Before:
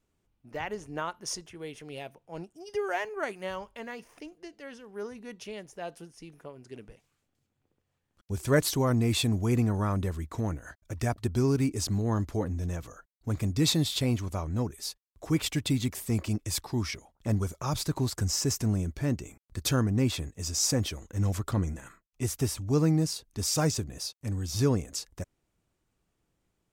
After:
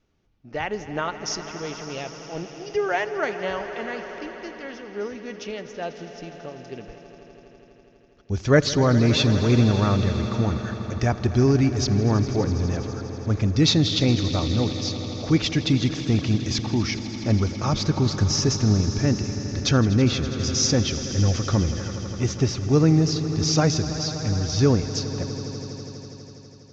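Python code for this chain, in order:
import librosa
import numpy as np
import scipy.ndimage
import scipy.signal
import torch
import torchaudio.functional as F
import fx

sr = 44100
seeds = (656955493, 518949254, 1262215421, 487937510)

y = scipy.signal.sosfilt(scipy.signal.butter(12, 6400.0, 'lowpass', fs=sr, output='sos'), x)
y = fx.notch(y, sr, hz=1000.0, q=11.0)
y = fx.echo_swell(y, sr, ms=82, loudest=5, wet_db=-16.0)
y = y * 10.0 ** (7.0 / 20.0)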